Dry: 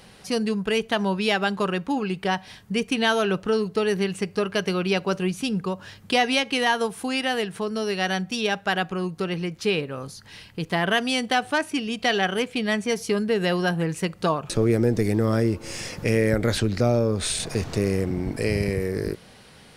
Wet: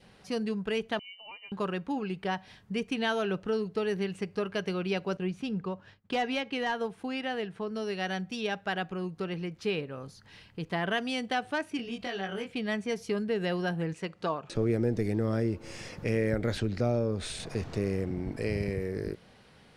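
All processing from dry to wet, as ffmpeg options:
-filter_complex "[0:a]asettb=1/sr,asplit=3[a][b][c];[a]atrim=end=0.994[d];[b]atrim=start=0.99:end=1.52,asetpts=PTS-STARTPTS,afade=t=in:d=0.004:c=qsin,afade=t=out:st=0.526:d=0.004:c=qsin,asplit=3[e][f][g];[e]bandpass=f=300:t=q:w=8,volume=0dB[h];[f]bandpass=f=870:t=q:w=8,volume=-6dB[i];[g]bandpass=f=2.24k:t=q:w=8,volume=-9dB[j];[h][i][j]amix=inputs=3:normalize=0,lowpass=f=2.7k:t=q:w=0.5098,lowpass=f=2.7k:t=q:w=0.6013,lowpass=f=2.7k:t=q:w=0.9,lowpass=f=2.7k:t=q:w=2.563,afreqshift=-3200[k];[c]atrim=start=1.516[l];[d][k]acrossfade=d=0.004:c1=hsin:c2=qsin[m];[m][l]acrossfade=d=0.004:c1=qsin:c2=hsin,asettb=1/sr,asplit=3[n][o][p];[n]atrim=end=5.174[q];[o]atrim=start=5.17:end=7.75,asetpts=PTS-STARTPTS,afade=t=in:d=0.004:c=qsin,afade=t=out:st=2.576:d=0.004:c=qsin,agate=range=-33dB:threshold=-39dB:ratio=3:release=100:detection=peak,highshelf=f=6.1k:g=-11.5,volume=15.5dB,asoftclip=hard,volume=-15.5dB[r];[p]atrim=start=7.746[s];[q][r]acrossfade=d=0.004:c1=hsin:c2=qsin[t];[t][s]acrossfade=d=0.004:c1=qsin:c2=hsin,asettb=1/sr,asplit=3[u][v][w];[u]atrim=end=11.774[x];[v]atrim=start=11.77:end=12.51,asetpts=PTS-STARTPTS,afade=t=in:d=0.004:c=qsin,afade=t=out:st=0.736:d=0.004:c=qsin,acompressor=threshold=-27dB:ratio=3:attack=3.2:release=140:knee=1:detection=peak,asplit=2[y][z];[z]adelay=21,volume=-2dB[aa];[y][aa]amix=inputs=2:normalize=0,atrim=end_sample=32634[ab];[w]atrim=start=12.506[ac];[x][ab]acrossfade=d=0.004:c1=hsin:c2=qsin[ad];[ad][ac]acrossfade=d=0.004:c1=qsin:c2=hsin,asettb=1/sr,asplit=3[ae][af][ag];[ae]atrim=end=13.934[ah];[af]atrim=start=13.93:end=14.55,asetpts=PTS-STARTPTS,afade=t=in:d=0.004:c=qsin,afade=t=out:st=0.616:d=0.004:c=qsin,lowpass=8.3k,lowshelf=f=140:g=-12[ai];[ag]atrim=start=14.546[aj];[ah][ai]acrossfade=d=0.004:c1=hsin:c2=qsin[ak];[ak][aj]acrossfade=d=0.004:c1=qsin:c2=hsin,lowpass=f=3.4k:p=1,adynamicequalizer=threshold=0.00708:dfrequency=1100:dqfactor=2.4:tfrequency=1100:tqfactor=2.4:attack=5:release=100:ratio=0.375:range=2:mode=cutabove:tftype=bell,volume=-7dB"

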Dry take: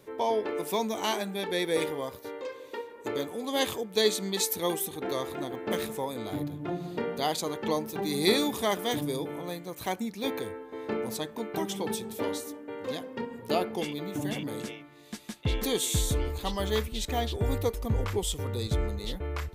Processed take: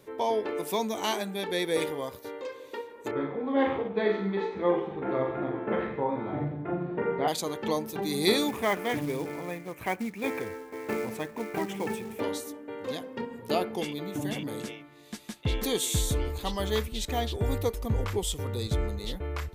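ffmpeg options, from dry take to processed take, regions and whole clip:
-filter_complex "[0:a]asettb=1/sr,asplit=3[a][b][c];[a]atrim=end=3.114[d];[b]atrim=start=3.11:end=7.28,asetpts=PTS-STARTPTS,afade=t=in:d=0.004:c=qsin,afade=t=out:st=4.166:d=0.004:c=qsin,lowpass=f=2.1k:w=0.5412,lowpass=f=2.1k:w=1.3066,asplit=2[e][f];[f]adelay=15,volume=-5.5dB[g];[e][g]amix=inputs=2:normalize=0,atrim=end_sample=183897,aecho=1:1:40|84|132.4|185.6|244.2:0.631|0.398|0.251|0.158|0.1,atrim=end_sample=183897[h];[c]atrim=start=7.276[i];[d][h]acrossfade=d=0.004:c1=hsin:c2=qsin[j];[j][i]acrossfade=d=0.004:c1=qsin:c2=hsin,asettb=1/sr,asplit=3[k][l][m];[k]atrim=end=8.484[n];[l]atrim=start=8.48:end=12.2,asetpts=PTS-STARTPTS,afade=t=in:d=0.004:c=qsin,afade=t=out:st=3.716:d=0.004:c=qsin,highshelf=f=3.1k:t=q:w=3:g=-9,acrusher=bits=4:mode=log:mix=0:aa=0.000001[o];[m]atrim=start=12.196[p];[n][o]acrossfade=d=0.004:c1=hsin:c2=qsin[q];[q][p]acrossfade=d=0.004:c1=qsin:c2=hsin"

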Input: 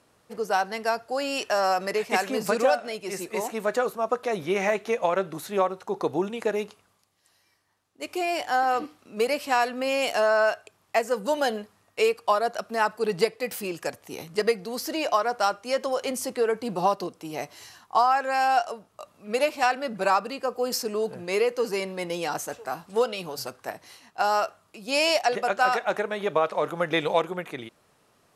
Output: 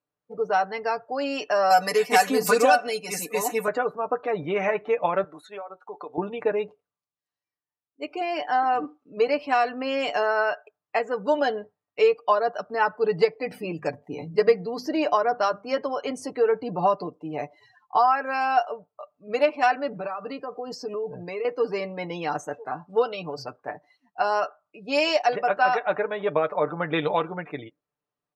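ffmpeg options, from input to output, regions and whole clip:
-filter_complex "[0:a]asettb=1/sr,asplit=3[a][b][c];[a]atrim=end=1.704[d];[b]atrim=start=1.7:end=3.68,asetpts=PTS-STARTPTS,afade=t=in:d=0.004:c=qsin,afade=t=out:st=1.976:d=0.004:c=qsin,aemphasis=mode=production:type=75fm,aecho=1:1:4.1:0.94,atrim=end_sample=87318[e];[c]atrim=start=3.676[f];[d][e]acrossfade=d=0.004:c1=hsin:c2=qsin[g];[g][f]acrossfade=d=0.004:c1=qsin:c2=hsin,asettb=1/sr,asplit=3[h][i][j];[h]atrim=end=5.244[k];[i]atrim=start=5.24:end=6.18,asetpts=PTS-STARTPTS,afade=t=in:d=0.004:c=qsin,afade=t=out:st=0.936:d=0.004:c=qsin,highpass=f=1.1k:p=1,equalizer=f=8.8k:w=2.7:g=4,acompressor=threshold=-32dB:ratio=12:attack=3.2:release=140:knee=1:detection=peak[l];[j]atrim=start=6.176[m];[k][l]acrossfade=d=0.004:c1=hsin:c2=qsin[n];[n][m]acrossfade=d=0.004:c1=qsin:c2=hsin,asettb=1/sr,asplit=3[o][p][q];[o]atrim=end=13.374[r];[p]atrim=start=13.37:end=15.81,asetpts=PTS-STARTPTS,afade=t=in:d=0.004:c=qsin,afade=t=out:st=2.436:d=0.004:c=qsin,lowshelf=f=320:g=6.5,bandreject=f=50:t=h:w=6,bandreject=f=100:t=h:w=6,bandreject=f=150:t=h:w=6,bandreject=f=200:t=h:w=6,bandreject=f=250:t=h:w=6[s];[q]atrim=start=15.806[t];[r][s]acrossfade=d=0.004:c1=hsin:c2=qsin[u];[u][t]acrossfade=d=0.004:c1=qsin:c2=hsin,asettb=1/sr,asplit=3[v][w][x];[v]atrim=end=19.884[y];[w]atrim=start=19.88:end=21.45,asetpts=PTS-STARTPTS,afade=t=in:d=0.004:c=qsin,afade=t=out:st=1.566:d=0.004:c=qsin,acompressor=threshold=-28dB:ratio=12:attack=3.2:release=140:knee=1:detection=peak,acrusher=bits=8:mix=0:aa=0.5[z];[x]atrim=start=21.446[aa];[y][z]acrossfade=d=0.004:c1=hsin:c2=qsin[ab];[ab][aa]acrossfade=d=0.004:c1=qsin:c2=hsin,lowpass=f=3.2k:p=1,afftdn=nr=27:nf=-44,aecho=1:1:6.8:0.57"

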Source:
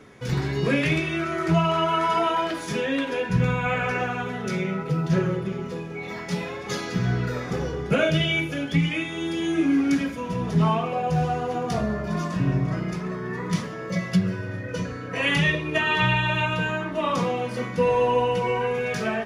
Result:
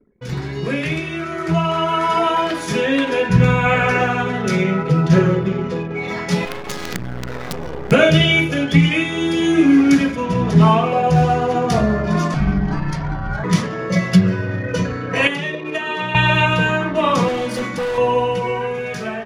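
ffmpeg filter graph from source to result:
-filter_complex "[0:a]asettb=1/sr,asplit=3[a][b][c];[a]atrim=end=6.454[d];[b]atrim=start=6.45:end=7.92,asetpts=PTS-STARTPTS,afade=t=in:d=0.004:c=qsin,afade=t=out:st=1.466:d=0.004:c=qsin,adynamicequalizer=threshold=0.0112:dfrequency=110:dqfactor=1.6:tfrequency=110:tqfactor=1.6:attack=5:release=100:ratio=0.375:range=3:mode=cutabove:tftype=bell,acompressor=threshold=-28dB:ratio=10:attack=3.2:release=140:knee=1:detection=peak,acrusher=bits=5:dc=4:mix=0:aa=0.000001[e];[c]atrim=start=7.916[f];[d][e]acrossfade=d=0.004:c1=hsin:c2=qsin[g];[g][f]acrossfade=d=0.004:c1=qsin:c2=hsin,asettb=1/sr,asplit=3[h][i][j];[h]atrim=end=12.344[k];[i]atrim=start=12.34:end=13.44,asetpts=PTS-STARTPTS,afade=t=in:d=0.004:c=qsin,afade=t=out:st=1.096:d=0.004:c=qsin,highpass=170,afreqshift=-330[l];[j]atrim=start=13.436[m];[k][l]acrossfade=d=0.004:c1=hsin:c2=qsin[n];[n][m]acrossfade=d=0.004:c1=qsin:c2=hsin,asettb=1/sr,asplit=3[o][p][q];[o]atrim=end=15.274[r];[p]atrim=start=15.27:end=16.15,asetpts=PTS-STARTPTS,afade=t=in:d=0.004:c=qsin,afade=t=out:st=0.876:d=0.004:c=qsin,highpass=280,acrossover=split=780|5600[s][t][u];[s]acompressor=threshold=-34dB:ratio=4[v];[t]acompressor=threshold=-36dB:ratio=4[w];[u]acompressor=threshold=-57dB:ratio=4[x];[v][w][x]amix=inputs=3:normalize=0[y];[q]atrim=start=16.146[z];[r][y]acrossfade=d=0.004:c1=hsin:c2=qsin[aa];[aa][z]acrossfade=d=0.004:c1=qsin:c2=hsin,asettb=1/sr,asplit=3[ab][ac][ad];[ab]atrim=end=17.284[ae];[ac]atrim=start=17.28:end=17.98,asetpts=PTS-STARTPTS,afade=t=in:d=0.004:c=qsin,afade=t=out:st=0.696:d=0.004:c=qsin,highshelf=f=3.8k:g=6,aecho=1:1:3.5:0.49,atrim=end_sample=30870,volume=25.5dB,asoftclip=hard,volume=-25.5dB[af];[ad]atrim=start=17.976[ag];[ae][af]acrossfade=d=0.004:c1=hsin:c2=qsin[ah];[ah][ag]acrossfade=d=0.004:c1=qsin:c2=hsin,anlmdn=0.251,dynaudnorm=f=650:g=7:m=11.5dB"

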